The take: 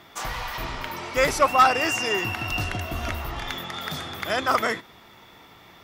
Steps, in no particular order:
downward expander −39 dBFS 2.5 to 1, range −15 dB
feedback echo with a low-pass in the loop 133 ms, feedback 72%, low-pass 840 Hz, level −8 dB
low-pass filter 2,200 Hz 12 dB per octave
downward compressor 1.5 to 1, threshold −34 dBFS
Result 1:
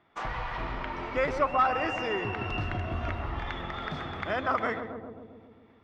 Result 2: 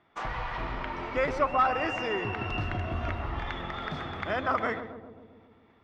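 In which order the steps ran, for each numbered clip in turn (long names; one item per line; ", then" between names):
low-pass filter, then downward expander, then feedback echo with a low-pass in the loop, then downward compressor
low-pass filter, then downward expander, then downward compressor, then feedback echo with a low-pass in the loop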